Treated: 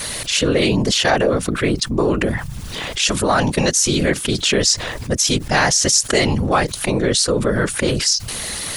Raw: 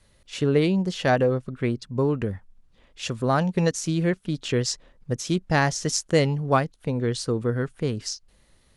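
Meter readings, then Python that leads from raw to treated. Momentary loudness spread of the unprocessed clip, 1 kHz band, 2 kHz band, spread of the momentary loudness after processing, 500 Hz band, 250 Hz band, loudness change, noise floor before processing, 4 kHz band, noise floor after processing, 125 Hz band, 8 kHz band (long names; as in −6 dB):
11 LU, +6.5 dB, +10.0 dB, 6 LU, +5.5 dB, +5.5 dB, +7.5 dB, −60 dBFS, +15.0 dB, −30 dBFS, +2.5 dB, +15.5 dB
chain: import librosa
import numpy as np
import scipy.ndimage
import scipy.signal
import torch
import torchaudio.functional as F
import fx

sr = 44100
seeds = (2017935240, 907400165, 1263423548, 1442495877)

y = fx.tilt_eq(x, sr, slope=2.5)
y = fx.whisperise(y, sr, seeds[0])
y = fx.env_flatten(y, sr, amount_pct=70)
y = y * 10.0 ** (3.5 / 20.0)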